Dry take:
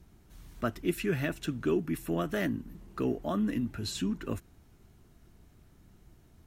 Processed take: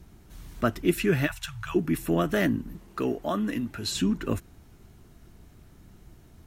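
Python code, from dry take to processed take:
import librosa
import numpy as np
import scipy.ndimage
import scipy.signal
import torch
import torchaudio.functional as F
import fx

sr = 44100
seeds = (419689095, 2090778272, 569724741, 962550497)

y = fx.cheby1_bandstop(x, sr, low_hz=110.0, high_hz=850.0, order=3, at=(1.26, 1.74), fade=0.02)
y = fx.low_shelf(y, sr, hz=310.0, db=-8.5, at=(2.78, 3.92))
y = y * librosa.db_to_amplitude(6.5)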